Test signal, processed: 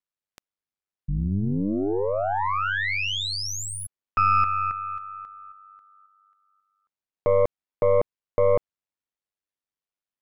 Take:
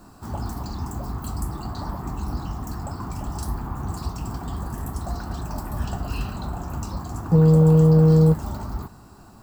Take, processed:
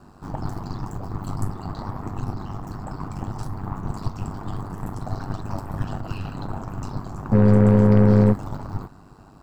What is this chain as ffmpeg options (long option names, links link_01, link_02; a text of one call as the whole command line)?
ffmpeg -i in.wav -af "aeval=exprs='val(0)*sin(2*PI*49*n/s)':channel_layout=same,aeval=exprs='0.422*(cos(1*acos(clip(val(0)/0.422,-1,1)))-cos(1*PI/2))+0.0335*(cos(8*acos(clip(val(0)/0.422,-1,1)))-cos(8*PI/2))':channel_layout=same,aemphasis=mode=reproduction:type=50kf,volume=2.5dB" out.wav